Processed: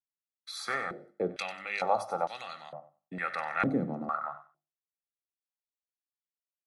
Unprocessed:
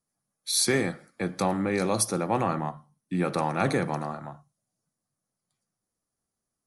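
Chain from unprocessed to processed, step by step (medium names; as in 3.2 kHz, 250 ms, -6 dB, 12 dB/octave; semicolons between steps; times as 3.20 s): expander -48 dBFS; hum notches 50/100/150/200/250/300/350 Hz; comb 1.5 ms, depth 56%; in parallel at +1.5 dB: compression, threshold -34 dBFS, peak gain reduction 14.5 dB; on the sum: thinning echo 94 ms, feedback 26%, high-pass 1 kHz, level -12 dB; step-sequenced band-pass 2.2 Hz 270–3900 Hz; trim +5 dB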